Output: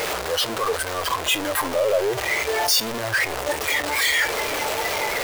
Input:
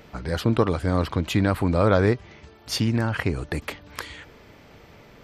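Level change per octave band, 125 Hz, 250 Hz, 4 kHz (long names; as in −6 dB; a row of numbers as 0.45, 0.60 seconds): −15.0, −9.5, +11.5 decibels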